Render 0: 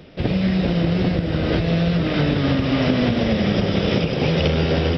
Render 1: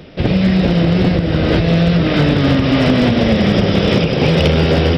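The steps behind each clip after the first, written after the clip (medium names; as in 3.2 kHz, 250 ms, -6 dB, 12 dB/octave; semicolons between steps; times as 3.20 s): hard clipper -12 dBFS, distortion -22 dB; trim +6.5 dB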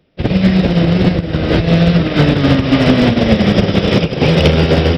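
upward expansion 2.5:1, over -27 dBFS; trim +4.5 dB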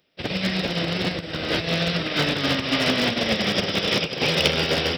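tilt EQ +3.5 dB/octave; trim -7.5 dB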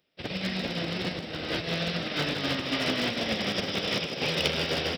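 frequency-shifting echo 157 ms, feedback 59%, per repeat +48 Hz, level -11 dB; trim -7 dB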